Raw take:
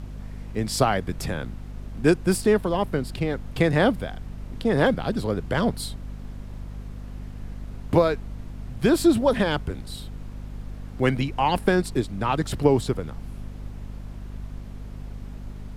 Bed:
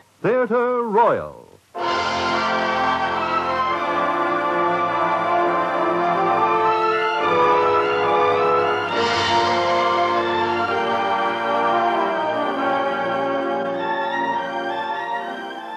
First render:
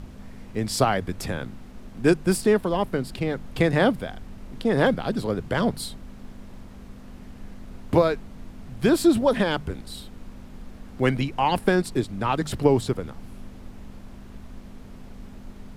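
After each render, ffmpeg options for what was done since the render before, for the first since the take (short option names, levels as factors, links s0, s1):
-af "bandreject=f=50:t=h:w=6,bandreject=f=100:t=h:w=6,bandreject=f=150:t=h:w=6"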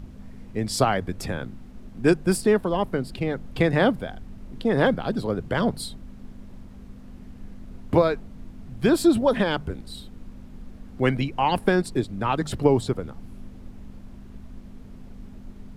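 -af "afftdn=nr=6:nf=-43"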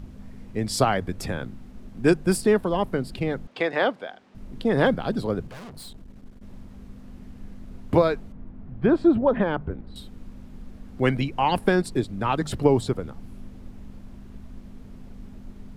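-filter_complex "[0:a]asettb=1/sr,asplit=3[s0][s1][s2];[s0]atrim=end=3.474[s3];[s1]atrim=start=3.47:end=4.35,asetpts=PTS-STARTPTS,afade=t=in:d=0.004:c=qsin,afade=t=out:st=0.876:d=0.004:c=qsin,highpass=450,lowpass=5200[s4];[s2]atrim=start=4.346[s5];[s3][s4]acrossfade=d=0.004:c1=hsin:c2=qsin[s6];[s6][s5]acrossfade=d=0.004:c1=qsin:c2=hsin,asettb=1/sr,asplit=3[s7][s8][s9];[s7]atrim=end=5.474[s10];[s8]atrim=start=5.47:end=6.43,asetpts=PTS-STARTPTS,afade=t=in:d=0.004:c=qsin,afade=t=out:st=0.956:d=0.004:c=qsin,aeval=exprs='(tanh(89.1*val(0)+0.45)-tanh(0.45))/89.1':c=same[s11];[s9]atrim=start=6.426[s12];[s10][s11]acrossfade=d=0.004:c1=hsin:c2=qsin[s13];[s13][s12]acrossfade=d=0.004:c1=qsin:c2=hsin,asettb=1/sr,asplit=3[s14][s15][s16];[s14]atrim=end=8.324[s17];[s15]atrim=start=8.32:end=9.96,asetpts=PTS-STARTPTS,afade=t=in:d=0.004:c=qsin,afade=t=out:st=1.636:d=0.004:c=qsin,lowpass=1600[s18];[s16]atrim=start=9.956[s19];[s17][s18]acrossfade=d=0.004:c1=hsin:c2=qsin[s20];[s20][s19]acrossfade=d=0.004:c1=qsin:c2=hsin"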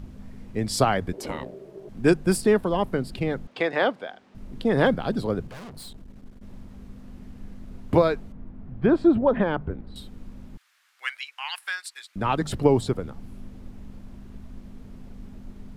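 -filter_complex "[0:a]asettb=1/sr,asplit=3[s0][s1][s2];[s0]atrim=end=1.134[s3];[s1]atrim=start=1.13:end=1.89,asetpts=PTS-STARTPTS,afade=t=in:d=0.004:c=qsin,afade=t=out:st=0.756:d=0.004:c=qsin,aeval=exprs='val(0)*sin(2*PI*390*n/s)':c=same[s4];[s2]atrim=start=1.886[s5];[s3][s4]acrossfade=d=0.004:c1=hsin:c2=qsin[s6];[s6][s5]acrossfade=d=0.004:c1=qsin:c2=hsin,asettb=1/sr,asplit=3[s7][s8][s9];[s7]atrim=end=10.574[s10];[s8]atrim=start=10.57:end=12.16,asetpts=PTS-STARTPTS,afade=t=in:d=0.004:c=qsin,afade=t=out:st=1.586:d=0.004:c=qsin,highpass=f=1400:w=0.5412,highpass=f=1400:w=1.3066[s11];[s9]atrim=start=12.156[s12];[s10][s11]acrossfade=d=0.004:c1=hsin:c2=qsin[s13];[s13][s12]acrossfade=d=0.004:c1=qsin:c2=hsin"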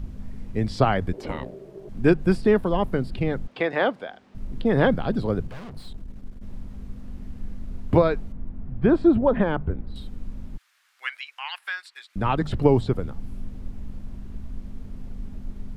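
-filter_complex "[0:a]acrossover=split=4200[s0][s1];[s1]acompressor=threshold=0.00141:ratio=4:attack=1:release=60[s2];[s0][s2]amix=inputs=2:normalize=0,lowshelf=f=99:g=9.5"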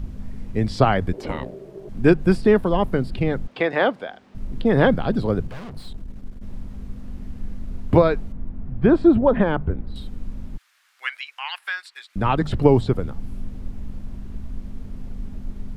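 -af "volume=1.41"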